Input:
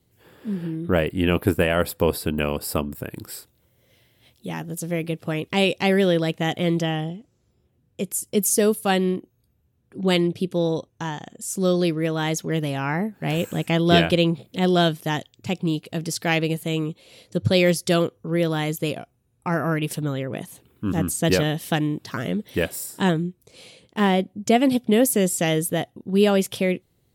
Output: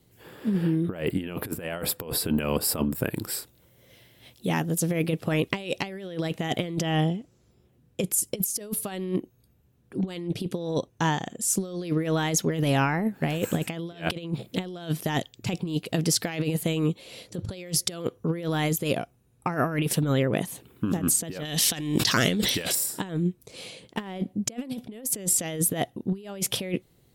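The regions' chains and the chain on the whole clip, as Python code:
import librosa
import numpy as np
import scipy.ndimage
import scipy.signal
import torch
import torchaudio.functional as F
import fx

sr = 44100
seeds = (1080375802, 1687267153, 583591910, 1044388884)

y = fx.chain(x, sr, fx.peak_eq(hz=5400.0, db=14.5, octaves=2.4),
    fx.transient(attack_db=-4, sustain_db=1),
    fx.sustainer(db_per_s=52.0), at=(21.45, 22.75))
y = fx.peak_eq(y, sr, hz=84.0, db=-8.5, octaves=0.35)
y = fx.over_compress(y, sr, threshold_db=-26.0, ratio=-0.5)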